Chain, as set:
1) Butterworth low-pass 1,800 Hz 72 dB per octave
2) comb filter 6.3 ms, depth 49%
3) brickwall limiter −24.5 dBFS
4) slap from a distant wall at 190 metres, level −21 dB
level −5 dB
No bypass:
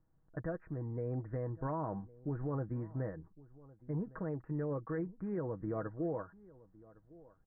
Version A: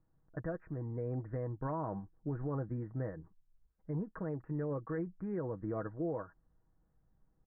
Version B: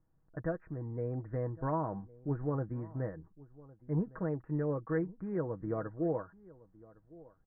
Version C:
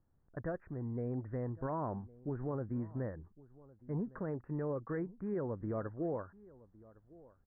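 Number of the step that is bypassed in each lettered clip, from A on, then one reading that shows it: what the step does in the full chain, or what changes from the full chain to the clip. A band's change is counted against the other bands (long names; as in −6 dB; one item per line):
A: 4, echo-to-direct ratio −24.5 dB to none audible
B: 3, change in crest factor +4.0 dB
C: 2, 125 Hz band −1.5 dB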